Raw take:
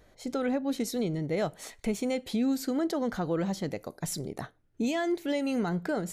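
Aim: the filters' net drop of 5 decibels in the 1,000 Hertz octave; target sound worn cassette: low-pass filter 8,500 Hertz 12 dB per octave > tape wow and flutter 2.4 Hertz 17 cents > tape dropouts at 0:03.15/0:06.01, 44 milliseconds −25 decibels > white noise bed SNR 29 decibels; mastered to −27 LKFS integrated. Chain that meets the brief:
low-pass filter 8,500 Hz 12 dB per octave
parametric band 1,000 Hz −8 dB
tape wow and flutter 2.4 Hz 17 cents
tape dropouts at 0:03.15/0:06.01, 44 ms −25 dB
white noise bed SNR 29 dB
level +5 dB

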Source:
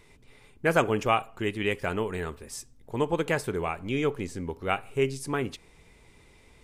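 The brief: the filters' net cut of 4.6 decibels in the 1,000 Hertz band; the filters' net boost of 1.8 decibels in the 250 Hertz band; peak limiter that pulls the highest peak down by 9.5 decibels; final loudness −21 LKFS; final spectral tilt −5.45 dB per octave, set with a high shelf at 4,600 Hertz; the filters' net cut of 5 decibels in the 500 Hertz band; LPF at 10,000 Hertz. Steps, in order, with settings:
low-pass filter 10,000 Hz
parametric band 250 Hz +5 dB
parametric band 500 Hz −7 dB
parametric band 1,000 Hz −4 dB
high-shelf EQ 4,600 Hz −3.5 dB
level +13 dB
brickwall limiter −8 dBFS

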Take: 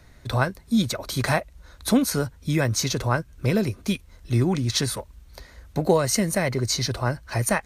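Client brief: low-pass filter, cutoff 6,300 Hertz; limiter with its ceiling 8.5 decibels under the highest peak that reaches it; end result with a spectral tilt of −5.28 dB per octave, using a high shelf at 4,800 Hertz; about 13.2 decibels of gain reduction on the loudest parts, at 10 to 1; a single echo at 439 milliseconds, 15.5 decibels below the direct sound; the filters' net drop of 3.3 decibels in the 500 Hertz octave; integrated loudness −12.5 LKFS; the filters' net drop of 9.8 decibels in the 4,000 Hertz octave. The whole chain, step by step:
low-pass filter 6,300 Hz
parametric band 500 Hz −4 dB
parametric band 4,000 Hz −8.5 dB
high-shelf EQ 4,800 Hz −4.5 dB
downward compressor 10 to 1, threshold −30 dBFS
brickwall limiter −27.5 dBFS
single-tap delay 439 ms −15.5 dB
level +26 dB

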